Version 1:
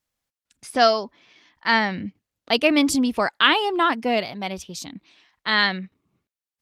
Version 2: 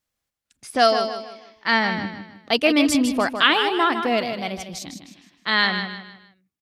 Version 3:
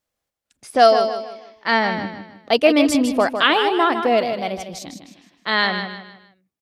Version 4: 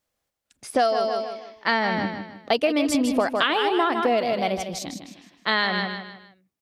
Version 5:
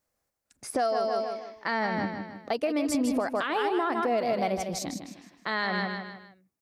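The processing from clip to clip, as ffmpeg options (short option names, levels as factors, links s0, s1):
-af "bandreject=f=940:w=20,aecho=1:1:155|310|465|620:0.398|0.143|0.0516|0.0186"
-af "equalizer=f=560:w=0.92:g=7.5,volume=0.891"
-af "acompressor=threshold=0.112:ratio=10,volume=1.19"
-af "equalizer=f=3200:w=1.9:g=-8.5,alimiter=limit=0.126:level=0:latency=1:release=303"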